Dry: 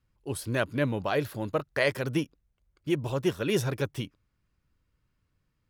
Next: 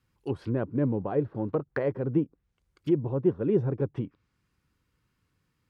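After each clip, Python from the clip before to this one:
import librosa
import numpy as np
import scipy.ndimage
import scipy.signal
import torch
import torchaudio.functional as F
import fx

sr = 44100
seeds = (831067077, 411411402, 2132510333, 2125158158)

y = fx.env_lowpass_down(x, sr, base_hz=570.0, full_db=-27.5)
y = fx.highpass(y, sr, hz=120.0, slope=6)
y = fx.peak_eq(y, sr, hz=620.0, db=-9.0, octaves=0.23)
y = F.gain(torch.from_numpy(y), 4.5).numpy()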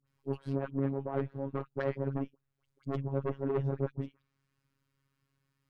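y = fx.dispersion(x, sr, late='highs', ms=73.0, hz=1200.0)
y = fx.tube_stage(y, sr, drive_db=24.0, bias=0.5)
y = fx.robotise(y, sr, hz=137.0)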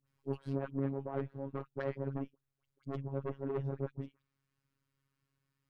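y = fx.rider(x, sr, range_db=10, speed_s=2.0)
y = F.gain(torch.from_numpy(y), -4.5).numpy()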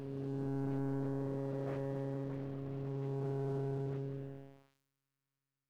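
y = fx.spec_blur(x, sr, span_ms=723.0)
y = fx.leveller(y, sr, passes=3)
y = F.gain(torch.from_numpy(y), -2.0).numpy()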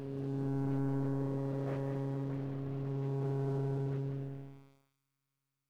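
y = x + 10.0 ** (-9.0 / 20.0) * np.pad(x, (int(189 * sr / 1000.0), 0))[:len(x)]
y = F.gain(torch.from_numpy(y), 2.0).numpy()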